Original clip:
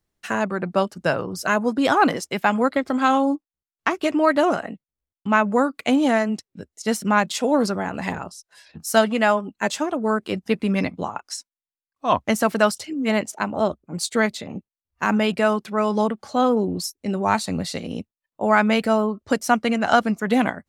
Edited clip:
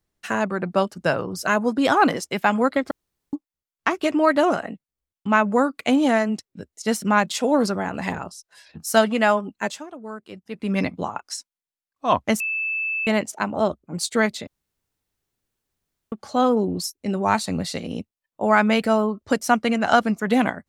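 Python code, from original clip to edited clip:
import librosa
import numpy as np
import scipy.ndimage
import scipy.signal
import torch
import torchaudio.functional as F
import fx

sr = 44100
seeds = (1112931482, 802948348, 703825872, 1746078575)

y = fx.edit(x, sr, fx.room_tone_fill(start_s=2.91, length_s=0.42),
    fx.fade_down_up(start_s=9.55, length_s=1.24, db=-13.5, fade_s=0.28),
    fx.bleep(start_s=12.4, length_s=0.67, hz=2630.0, db=-22.5),
    fx.room_tone_fill(start_s=14.47, length_s=1.65), tone=tone)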